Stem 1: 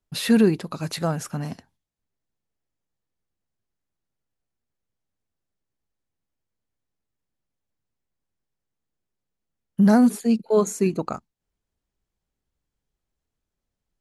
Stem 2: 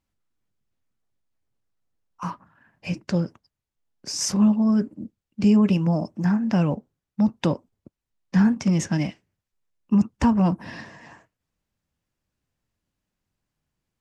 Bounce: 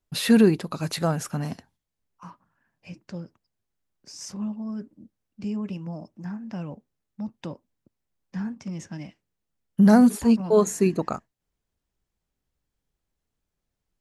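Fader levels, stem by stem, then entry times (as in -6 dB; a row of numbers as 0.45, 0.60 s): +0.5, -13.0 dB; 0.00, 0.00 s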